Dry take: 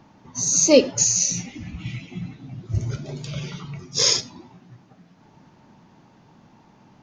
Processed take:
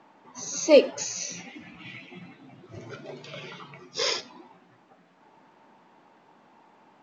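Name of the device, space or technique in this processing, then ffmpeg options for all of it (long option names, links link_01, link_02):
telephone: -af "highpass=390,lowpass=3000" -ar 16000 -c:a pcm_mulaw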